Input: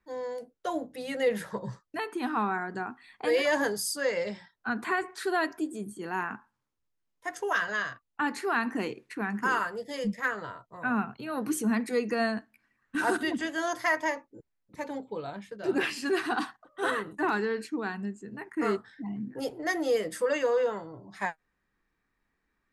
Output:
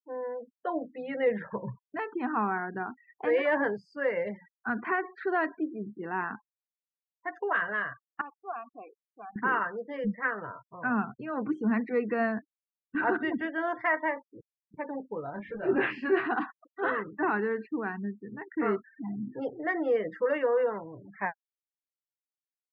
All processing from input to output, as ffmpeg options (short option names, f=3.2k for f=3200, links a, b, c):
-filter_complex "[0:a]asettb=1/sr,asplit=3[a][b][c];[a]atrim=end=8.214[d];[b]atrim=start=8.21:end=9.36,asetpts=PTS-STARTPTS,afade=t=in:d=0.004:c=qsin,afade=t=out:st=1.146:d=0.004:c=qsin,asplit=3[e][f][g];[e]bandpass=f=730:t=q:w=8,volume=0dB[h];[f]bandpass=f=1.09k:t=q:w=8,volume=-6dB[i];[g]bandpass=f=2.44k:t=q:w=8,volume=-9dB[j];[h][i][j]amix=inputs=3:normalize=0,aeval=exprs='val(0)*gte(abs(val(0)),0.00211)':c=same[k];[c]atrim=start=9.356[l];[d][k]acrossfade=d=0.004:c1=hsin:c2=qsin[m];[m][l]acrossfade=d=0.004:c1=qsin:c2=hsin,asettb=1/sr,asplit=3[n][o][p];[n]atrim=end=15.344[q];[o]atrim=start=15.34:end=16.28,asetpts=PTS-STARTPTS,afade=t=in:d=0.004:c=qsin,afade=t=out:st=0.936:d=0.004:c=qsin,aeval=exprs='val(0)+0.5*0.01*sgn(val(0))':c=same,asplit=2[r][s];[s]adelay=23,volume=-5dB[t];[r][t]amix=inputs=2:normalize=0,atrim=end_sample=41454[u];[p]atrim=start=16.276[v];[q][u]acrossfade=d=0.004:c1=hsin:c2=qsin[w];[w][v]acrossfade=d=0.004:c1=qsin:c2=hsin,afftfilt=real='re*gte(hypot(re,im),0.00891)':imag='im*gte(hypot(re,im),0.00891)':win_size=1024:overlap=0.75,lowpass=f=2.3k:w=0.5412,lowpass=f=2.3k:w=1.3066"